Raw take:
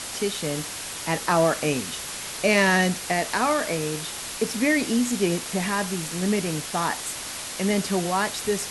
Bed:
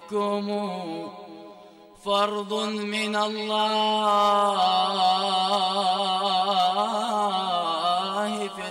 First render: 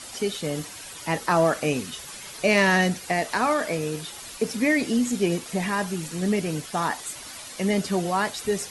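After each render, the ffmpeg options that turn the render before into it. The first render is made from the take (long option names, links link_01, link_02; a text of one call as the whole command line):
ffmpeg -i in.wav -af "afftdn=noise_reduction=10:noise_floor=-35" out.wav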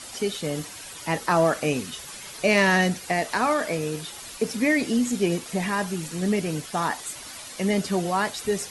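ffmpeg -i in.wav -af anull out.wav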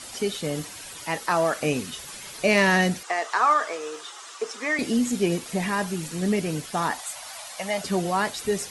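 ffmpeg -i in.wav -filter_complex "[0:a]asettb=1/sr,asplit=3[link_01][link_02][link_03];[link_01]atrim=end=1.044[link_04];[link_02]atrim=start=1.04:end=1.61,asetpts=PTS-STARTPTS,afade=type=in:duration=0.004:curve=qsin,afade=type=out:start_time=0.566:duration=0.004:curve=qsin,lowshelf=frequency=390:gain=-8.5[link_05];[link_03]atrim=start=1.606[link_06];[link_04][link_05]acrossfade=duration=0.004:curve1=hsin:curve2=qsin[link_07];[link_07][link_06]acrossfade=duration=0.004:curve1=qsin:curve2=hsin,asettb=1/sr,asplit=3[link_08][link_09][link_10];[link_08]atrim=end=3.034[link_11];[link_09]atrim=start=3.03:end=4.79,asetpts=PTS-STARTPTS,afade=type=in:duration=0.004:curve=qsin,afade=type=out:start_time=1.756:duration=0.004:curve=qsin,highpass=frequency=410:width=0.5412,highpass=frequency=410:width=1.3066,equalizer=frequency=560:width_type=q:width=4:gain=-7,equalizer=frequency=1200:width_type=q:width=4:gain=9,equalizer=frequency=2400:width_type=q:width=4:gain=-5,equalizer=frequency=4400:width_type=q:width=4:gain=-5,lowpass=frequency=7900:width=0.5412,lowpass=frequency=7900:width=1.3066[link_12];[link_10]atrim=start=4.786[link_13];[link_11][link_12]acrossfade=duration=0.004:curve1=hsin:curve2=qsin[link_14];[link_14][link_13]acrossfade=duration=0.004:curve1=qsin:curve2=hsin,asettb=1/sr,asplit=3[link_15][link_16][link_17];[link_15]atrim=end=6.994[link_18];[link_16]atrim=start=6.99:end=7.84,asetpts=PTS-STARTPTS,afade=type=in:duration=0.004:curve=qsin,afade=type=out:start_time=0.846:duration=0.004:curve=qsin,lowshelf=frequency=500:width_type=q:width=3:gain=-11[link_19];[link_17]atrim=start=7.836[link_20];[link_18][link_19]acrossfade=duration=0.004:curve1=hsin:curve2=qsin[link_21];[link_21][link_20]acrossfade=duration=0.004:curve1=qsin:curve2=hsin" out.wav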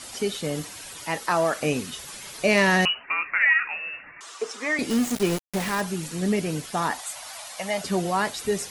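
ffmpeg -i in.wav -filter_complex "[0:a]asettb=1/sr,asplit=3[link_01][link_02][link_03];[link_01]atrim=end=2.854[link_04];[link_02]atrim=start=2.85:end=4.21,asetpts=PTS-STARTPTS,afade=type=in:duration=0.004:curve=qsin,afade=type=out:start_time=1.356:duration=0.004:curve=qsin,lowpass=frequency=2600:width_type=q:width=0.5098,lowpass=frequency=2600:width_type=q:width=0.6013,lowpass=frequency=2600:width_type=q:width=0.9,lowpass=frequency=2600:width_type=q:width=2.563,afreqshift=-3100[link_05];[link_03]atrim=start=4.206[link_06];[link_04][link_05]acrossfade=duration=0.004:curve1=hsin:curve2=qsin[link_07];[link_07][link_06]acrossfade=duration=0.004:curve1=qsin:curve2=hsin,asplit=3[link_08][link_09][link_10];[link_08]afade=type=out:start_time=4.89:duration=0.02[link_11];[link_09]aeval=exprs='val(0)*gte(abs(val(0)),0.0447)':channel_layout=same,afade=type=in:start_time=4.89:duration=0.02,afade=type=out:start_time=5.8:duration=0.02[link_12];[link_10]afade=type=in:start_time=5.8:duration=0.02[link_13];[link_11][link_12][link_13]amix=inputs=3:normalize=0" out.wav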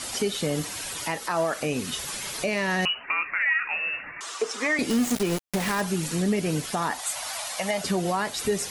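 ffmpeg -i in.wav -filter_complex "[0:a]asplit=2[link_01][link_02];[link_02]acompressor=threshold=-32dB:ratio=6,volume=0dB[link_03];[link_01][link_03]amix=inputs=2:normalize=0,alimiter=limit=-15.5dB:level=0:latency=1:release=174" out.wav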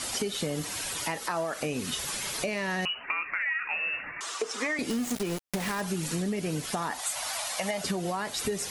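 ffmpeg -i in.wav -af "acompressor=threshold=-27dB:ratio=6" out.wav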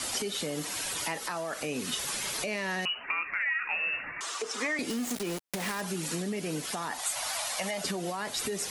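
ffmpeg -i in.wav -filter_complex "[0:a]acrossover=split=170|1800|6100[link_01][link_02][link_03][link_04];[link_01]acompressor=threshold=-53dB:ratio=6[link_05];[link_02]alimiter=level_in=3dB:limit=-24dB:level=0:latency=1:release=23,volume=-3dB[link_06];[link_05][link_06][link_03][link_04]amix=inputs=4:normalize=0" out.wav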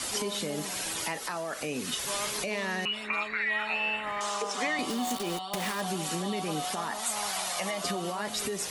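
ffmpeg -i in.wav -i bed.wav -filter_complex "[1:a]volume=-14.5dB[link_01];[0:a][link_01]amix=inputs=2:normalize=0" out.wav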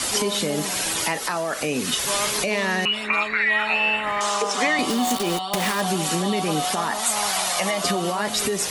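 ffmpeg -i in.wav -af "volume=9dB" out.wav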